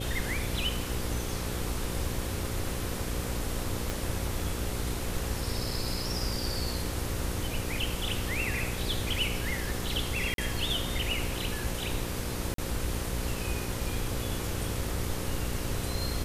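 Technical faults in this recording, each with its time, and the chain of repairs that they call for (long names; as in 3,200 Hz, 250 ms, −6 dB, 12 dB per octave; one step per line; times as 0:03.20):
mains buzz 60 Hz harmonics 9 −37 dBFS
0:03.90: click
0:10.34–0:10.38: drop-out 42 ms
0:12.54–0:12.58: drop-out 43 ms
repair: click removal
hum removal 60 Hz, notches 9
repair the gap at 0:10.34, 42 ms
repair the gap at 0:12.54, 43 ms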